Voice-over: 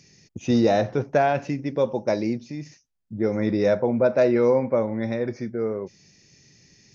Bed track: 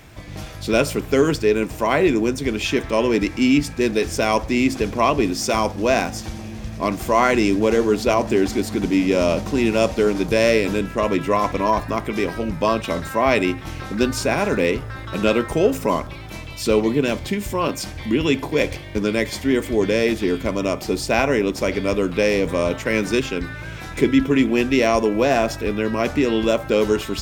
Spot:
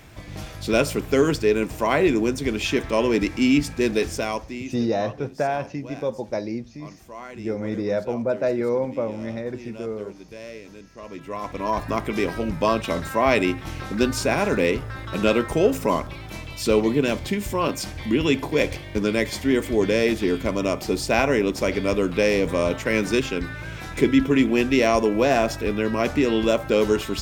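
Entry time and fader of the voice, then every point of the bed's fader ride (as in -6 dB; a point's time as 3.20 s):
4.25 s, -4.0 dB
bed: 4.03 s -2 dB
4.94 s -22 dB
10.89 s -22 dB
11.91 s -1.5 dB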